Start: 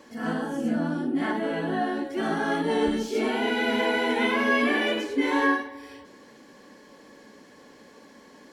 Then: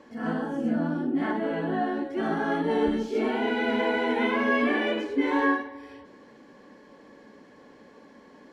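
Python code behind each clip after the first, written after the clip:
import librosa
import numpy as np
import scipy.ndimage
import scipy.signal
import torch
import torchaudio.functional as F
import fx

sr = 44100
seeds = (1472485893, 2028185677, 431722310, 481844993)

y = fx.lowpass(x, sr, hz=1900.0, slope=6)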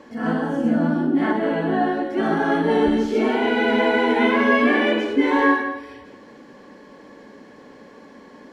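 y = x + 10.0 ** (-10.0 / 20.0) * np.pad(x, (int(171 * sr / 1000.0), 0))[:len(x)]
y = y * librosa.db_to_amplitude(6.5)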